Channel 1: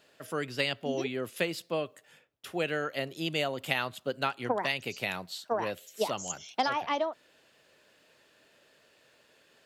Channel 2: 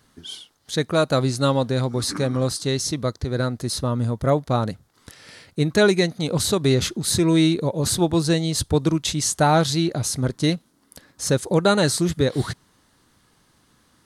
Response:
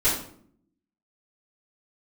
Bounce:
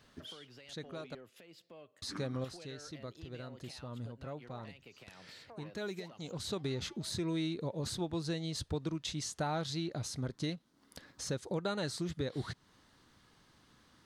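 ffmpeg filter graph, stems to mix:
-filter_complex "[0:a]acompressor=threshold=0.0112:ratio=10,alimiter=level_in=2.82:limit=0.0631:level=0:latency=1:release=95,volume=0.355,asoftclip=type=tanh:threshold=0.0178,volume=0.398,afade=t=out:st=6.06:d=0.46:silence=0.316228,asplit=2[s0][s1];[1:a]equalizer=f=3800:t=o:w=2.2:g=3,acompressor=threshold=0.02:ratio=2.5,volume=0.562,asplit=3[s2][s3][s4];[s2]atrim=end=1.15,asetpts=PTS-STARTPTS,afade=t=out:st=1.146:d=0.004:c=hsin[s5];[s3]atrim=start=1.15:end=2.02,asetpts=PTS-STARTPTS,volume=0[s6];[s4]atrim=start=2.02,asetpts=PTS-STARTPTS,afade=t=in:d=0.004:c=hsin[s7];[s5][s6][s7]concat=n=3:v=0:a=1[s8];[s1]apad=whole_len=619810[s9];[s8][s9]sidechaincompress=threshold=0.00141:ratio=8:attack=5.8:release=428[s10];[s0][s10]amix=inputs=2:normalize=0,equalizer=f=11000:w=0.74:g=-10"

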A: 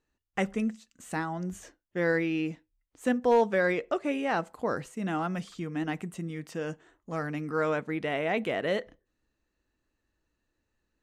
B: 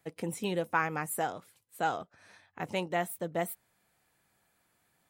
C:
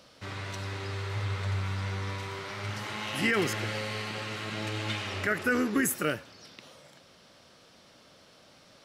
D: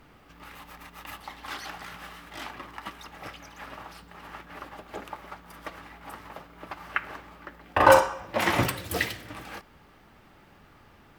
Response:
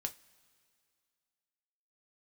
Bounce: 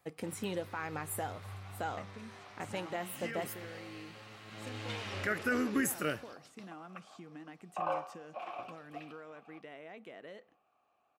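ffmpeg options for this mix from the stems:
-filter_complex "[0:a]highpass=170,acompressor=threshold=0.0126:ratio=6,adelay=1600,volume=0.355[s0];[1:a]alimiter=level_in=1.19:limit=0.0631:level=0:latency=1:release=182,volume=0.841,volume=0.531,asplit=2[s1][s2];[s2]volume=0.631[s3];[2:a]agate=range=0.178:threshold=0.00355:ratio=16:detection=peak,volume=0.447,afade=t=in:st=4.44:d=0.76:silence=0.281838,asplit=2[s4][s5];[s5]volume=0.282[s6];[3:a]asplit=3[s7][s8][s9];[s7]bandpass=f=730:t=q:w=8,volume=1[s10];[s8]bandpass=f=1090:t=q:w=8,volume=0.501[s11];[s9]bandpass=f=2440:t=q:w=8,volume=0.355[s12];[s10][s11][s12]amix=inputs=3:normalize=0,volume=0.398[s13];[4:a]atrim=start_sample=2205[s14];[s3][s6]amix=inputs=2:normalize=0[s15];[s15][s14]afir=irnorm=-1:irlink=0[s16];[s0][s1][s4][s13][s16]amix=inputs=5:normalize=0"

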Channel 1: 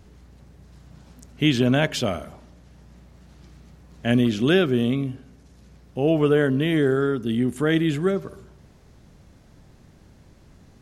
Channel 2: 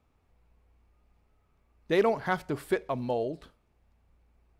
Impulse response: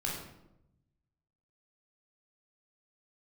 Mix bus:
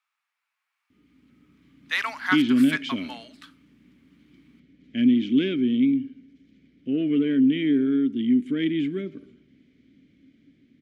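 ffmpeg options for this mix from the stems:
-filter_complex "[0:a]asoftclip=type=tanh:threshold=0.376,asplit=3[s0][s1][s2];[s0]bandpass=f=270:t=q:w=8,volume=1[s3];[s1]bandpass=f=2290:t=q:w=8,volume=0.501[s4];[s2]bandpass=f=3010:t=q:w=8,volume=0.355[s5];[s3][s4][s5]amix=inputs=3:normalize=0,adelay=900,volume=0.794[s6];[1:a]highpass=f=1300:w=0.5412,highpass=f=1300:w=1.3066,volume=1.06[s7];[s6][s7]amix=inputs=2:normalize=0,highshelf=f=6300:g=-5.5,dynaudnorm=f=240:g=9:m=3.16"

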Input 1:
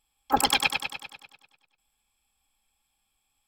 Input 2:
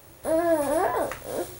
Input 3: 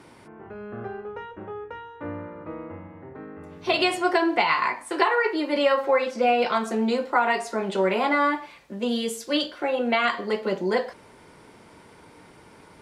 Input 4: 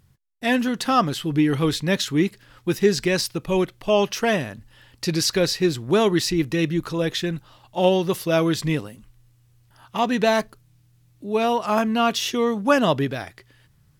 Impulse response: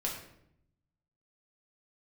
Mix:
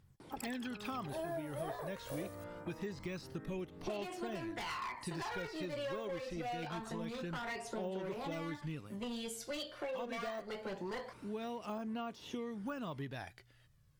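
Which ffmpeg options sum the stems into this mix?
-filter_complex "[0:a]volume=0.422,afade=t=in:st=0.81:d=0.21:silence=0.266073[s0];[1:a]tremolo=f=2.3:d=0.71,adelay=850,volume=0.596[s1];[2:a]asoftclip=type=hard:threshold=0.075,adelay=200,volume=0.398[s2];[3:a]deesser=0.8,equalizer=f=13000:t=o:w=0.77:g=-2.5,volume=0.266[s3];[s0][s1][s2][s3]amix=inputs=4:normalize=0,aphaser=in_gain=1:out_gain=1:delay=1.9:decay=0.41:speed=0.25:type=triangular,acompressor=threshold=0.0112:ratio=6"

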